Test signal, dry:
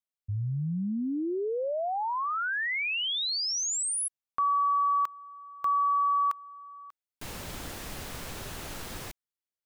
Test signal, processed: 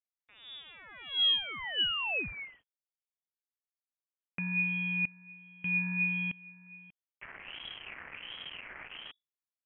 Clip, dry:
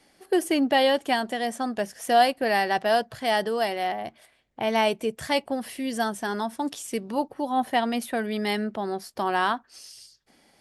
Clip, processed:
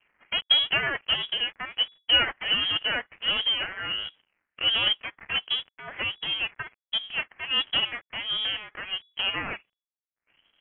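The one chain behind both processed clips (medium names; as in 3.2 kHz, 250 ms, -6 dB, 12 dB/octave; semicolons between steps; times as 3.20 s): dead-time distortion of 0.27 ms; hum notches 50/100/150/200 Hz; LFO high-pass sine 1.4 Hz 320–1800 Hz; frequency inversion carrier 3.6 kHz; trim -2 dB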